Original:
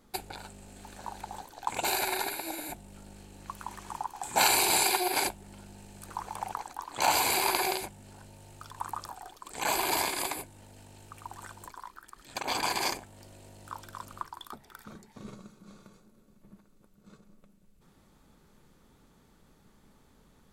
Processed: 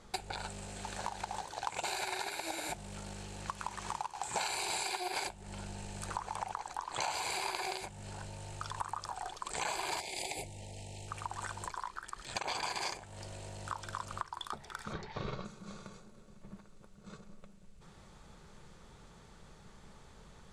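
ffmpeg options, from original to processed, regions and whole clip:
-filter_complex "[0:a]asettb=1/sr,asplit=3[a][b][c];[a]atrim=end=0.504[d];[b]atrim=start=0.5:end=4.4,asetpts=PTS-STARTPTS,afade=t=in:d=0.004:c=qsin,afade=t=out:st=3.896:d=0.004:c=qsin,highpass=f=55:p=1,acrusher=bits=2:mode=log:mix=0:aa=0.000001[e];[c]atrim=start=4.396[f];[d][e]acrossfade=d=0.004:c1=hsin:c2=qsin[g];[g][f]acrossfade=d=0.004:c1=qsin:c2=hsin,asettb=1/sr,asplit=3[h][i][j];[h]atrim=end=10.004[k];[i]atrim=start=10:end=11.08,asetpts=PTS-STARTPTS,afade=t=in:d=0.004:c=qsin,afade=t=out:st=1.076:d=0.004:c=qsin,acompressor=threshold=-37dB:ratio=2:attack=3.2:release=140:knee=1:detection=peak,asuperstop=centerf=1300:order=8:qfactor=1.2[l];[j]atrim=start=11.076[m];[k][l]acrossfade=d=0.004:c1=hsin:c2=qsin[n];[n][m]acrossfade=d=0.004:c1=qsin:c2=hsin,asettb=1/sr,asplit=3[o][p][q];[o]atrim=end=14.934[r];[p]atrim=start=14.93:end=15.45,asetpts=PTS-STARTPTS,afade=t=in:d=0.004:c=qsin,afade=t=out:st=0.516:d=0.004:c=qsin,lowpass=f=4.6k:w=0.5412,lowpass=f=4.6k:w=1.3066,equalizer=f=220:w=3.5:g=-11,acontrast=84[s];[q]atrim=start=15.446[t];[r][s]acrossfade=d=0.004:c1=hsin:c2=qsin[u];[u][t]acrossfade=d=0.004:c1=qsin:c2=hsin,lowpass=f=8.9k:w=0.5412,lowpass=f=8.9k:w=1.3066,equalizer=f=270:t=o:w=0.56:g=-11.5,acompressor=threshold=-42dB:ratio=6,volume=7dB"

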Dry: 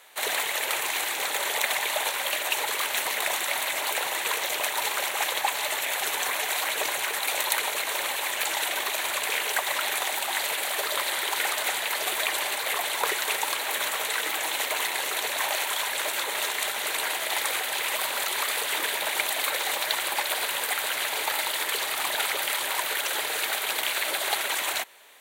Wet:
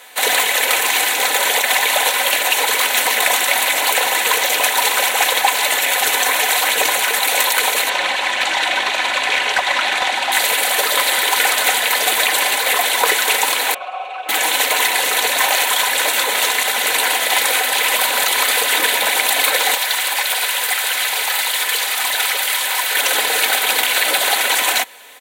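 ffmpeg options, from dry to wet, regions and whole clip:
-filter_complex "[0:a]asettb=1/sr,asplit=3[a][b][c];[a]atrim=end=7.894[d];[b]atrim=start=7.89:end=10.32,asetpts=PTS-STARTPTS,afade=t=in:d=0.004:c=qsin,afade=t=out:st=2.426:d=0.004:c=qsin,lowpass=4.6k,bandreject=f=460:w=6.3,asoftclip=type=hard:threshold=-19dB[e];[c]atrim=start=10.316[f];[d][e]acrossfade=d=0.004:c1=hsin:c2=qsin[g];[g][f]acrossfade=d=0.004:c1=qsin:c2=hsin,asettb=1/sr,asplit=3[h][i][j];[h]atrim=end=13.744[k];[i]atrim=start=13.74:end=14.29,asetpts=PTS-STARTPTS,afade=t=in:d=0.004:c=qsin,afade=t=out:st=0.546:d=0.004:c=qsin,asplit=3[l][m][n];[l]bandpass=f=730:t=q:w=8,volume=0dB[o];[m]bandpass=f=1.09k:t=q:w=8,volume=-6dB[p];[n]bandpass=f=2.44k:t=q:w=8,volume=-9dB[q];[o][p][q]amix=inputs=3:normalize=0,aemphasis=mode=reproduction:type=75fm,aecho=1:1:5.4:0.8,atrim=end_sample=24255[r];[j]atrim=start=14.286[s];[k][r]acrossfade=d=0.004:c1=hsin:c2=qsin[t];[t][s]acrossfade=d=0.004:c1=qsin:c2=hsin,asettb=1/sr,asplit=3[u][v][w];[u]atrim=end=19.754[x];[v]atrim=start=19.75:end=22.95,asetpts=PTS-STARTPTS,afade=t=in:d=0.004:c=qsin,afade=t=out:st=3.196:d=0.004:c=qsin,aeval=exprs='(tanh(11.2*val(0)+0.25)-tanh(0.25))/11.2':c=same,highpass=f=920:p=1[y];[w]atrim=start=22.946[z];[x][y]acrossfade=d=0.004:c1=hsin:c2=qsin[aa];[aa][z]acrossfade=d=0.004:c1=qsin:c2=hsin,bandreject=f=1.2k:w=13,aecho=1:1:4:0.5,alimiter=level_in=12dB:limit=-1dB:release=50:level=0:latency=1,volume=-1dB"

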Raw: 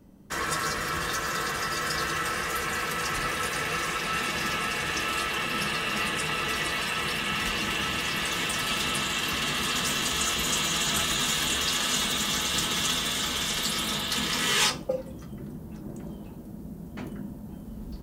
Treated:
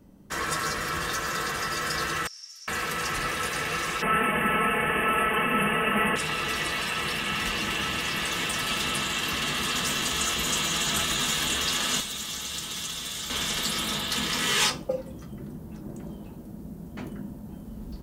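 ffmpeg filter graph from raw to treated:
-filter_complex "[0:a]asettb=1/sr,asplit=3[a][b][c];[a]atrim=end=2.274[d];[b]atrim=start=2.27:end=2.68,asetpts=PTS-STARTPTS,afade=t=in:d=0.004:c=qsin,afade=t=out:st=0.406:d=0.004:c=qsin,bandpass=f=5.5k:t=q:w=16,aemphasis=mode=production:type=cd[e];[c]atrim=start=2.676[f];[d][e]acrossfade=d=0.004:c1=hsin:c2=qsin[g];[g][f]acrossfade=d=0.004:c1=qsin:c2=hsin,asettb=1/sr,asplit=3[h][i][j];[h]atrim=end=4.024[k];[i]atrim=start=4.02:end=6.16,asetpts=PTS-STARTPTS,afade=t=in:d=0.004:c=qsin,afade=t=out:st=2.136:d=0.004:c=qsin,asuperstop=centerf=5300:order=12:qfactor=0.91,equalizer=f=460:w=0.31:g=6,aecho=1:1:4.6:0.57,atrim=end_sample=94374[l];[j]atrim=start=6.156[m];[k][l]acrossfade=d=0.004:c1=hsin:c2=qsin[n];[n][m]acrossfade=d=0.004:c1=qsin:c2=hsin,asettb=1/sr,asplit=3[o][p][q];[o]atrim=end=12.004[r];[p]atrim=start=12:end=13.3,asetpts=PTS-STARTPTS,afade=t=in:d=0.004:c=qsin,afade=t=out:st=1.296:d=0.004:c=qsin,bandreject=f=50:t=h:w=6,bandreject=f=100:t=h:w=6,bandreject=f=150:t=h:w=6,bandreject=f=200:t=h:w=6,bandreject=f=250:t=h:w=6,bandreject=f=300:t=h:w=6,bandreject=f=350:t=h:w=6,acrossover=split=200|3400[s][t][u];[s]acompressor=threshold=-47dB:ratio=4[v];[t]acompressor=threshold=-42dB:ratio=4[w];[u]acompressor=threshold=-33dB:ratio=4[x];[v][w][x]amix=inputs=3:normalize=0[y];[q]atrim=start=13.296[z];[r][y]acrossfade=d=0.004:c1=hsin:c2=qsin[aa];[aa][z]acrossfade=d=0.004:c1=qsin:c2=hsin"

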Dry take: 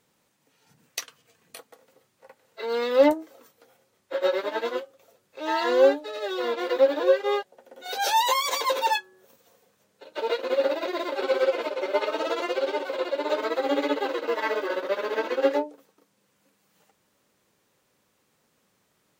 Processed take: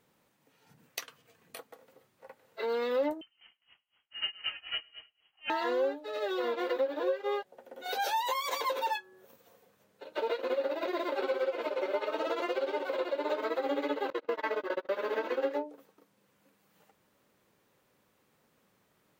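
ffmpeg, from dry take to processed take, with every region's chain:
-filter_complex "[0:a]asettb=1/sr,asplit=3[a][b][c];[a]atrim=end=3.214[d];[b]atrim=start=3.21:end=5.5,asetpts=PTS-STARTPTS,afade=t=in:d=0.004:c=qsin,afade=t=out:st=2.286:d=0.004:c=qsin,aecho=1:1:105|210|315|420:0.447|0.17|0.0645|0.0245,atrim=end_sample=100989,lowpass=f=2.9k:t=q:w=0.5098,lowpass=f=2.9k:t=q:w=0.6013,lowpass=f=2.9k:t=q:w=0.9,lowpass=f=2.9k:t=q:w=2.563,afreqshift=-3400,aeval=exprs='val(0)*pow(10,-24*(0.5-0.5*cos(2*PI*3.9*n/s))/20)':c=same[e];[c]atrim=start=5.496[f];[d][e]acrossfade=d=0.004:c1=hsin:c2=qsin[g];[g][f]acrossfade=d=0.004:c1=qsin:c2=hsin,asettb=1/sr,asplit=3[h][i][j];[h]atrim=end=14.104[k];[i]atrim=start=14.1:end=14.89,asetpts=PTS-STARTPTS,afade=t=in:d=0.004:c=qsin,afade=t=out:st=0.786:d=0.004:c=qsin,agate=range=-30dB:threshold=-29dB:ratio=16:release=100:detection=peak,highshelf=f=8k:g=-4[l];[j]atrim=start=14.886[m];[k][l]acrossfade=d=0.004:c1=hsin:c2=qsin[n];[n][m]acrossfade=d=0.004:c1=qsin:c2=hsin,acompressor=threshold=-29dB:ratio=4,equalizer=f=6.8k:w=0.6:g=-6.5"

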